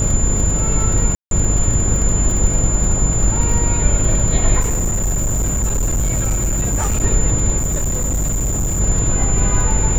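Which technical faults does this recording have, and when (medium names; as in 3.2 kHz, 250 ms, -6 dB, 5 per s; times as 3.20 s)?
buzz 50 Hz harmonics 15 -20 dBFS
crackle 46 per s -21 dBFS
whine 7.1 kHz -20 dBFS
1.15–1.31 s: dropout 162 ms
4.60–7.04 s: clipped -14 dBFS
7.57–8.81 s: clipped -15 dBFS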